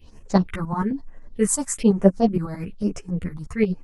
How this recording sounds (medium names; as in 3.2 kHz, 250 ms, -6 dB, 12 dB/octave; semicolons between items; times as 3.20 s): phasing stages 4, 1.1 Hz, lowest notch 410–4000 Hz; tremolo saw up 11 Hz, depth 75%; a shimmering, thickened sound